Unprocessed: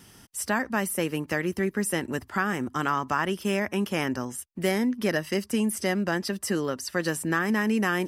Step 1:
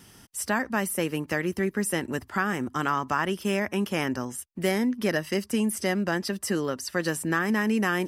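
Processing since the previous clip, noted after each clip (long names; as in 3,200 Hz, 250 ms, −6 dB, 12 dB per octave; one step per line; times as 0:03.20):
no processing that can be heard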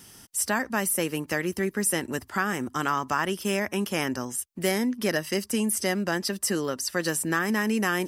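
bass and treble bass −2 dB, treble +6 dB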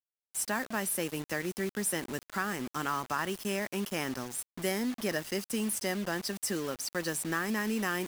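bit reduction 6 bits
level −6.5 dB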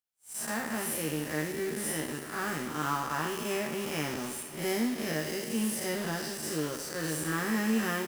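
spectrum smeared in time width 148 ms
double-tracking delay 13 ms −4 dB
feedback echo with a high-pass in the loop 152 ms, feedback 79%, high-pass 190 Hz, level −14 dB
level +2.5 dB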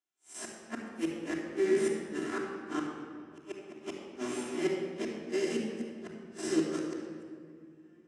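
gate with flip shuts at −22 dBFS, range −42 dB
loudspeaker in its box 120–7,700 Hz, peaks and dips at 140 Hz −10 dB, 340 Hz +9 dB, 4,600 Hz −6 dB
rectangular room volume 3,800 cubic metres, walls mixed, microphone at 3.1 metres
level −2.5 dB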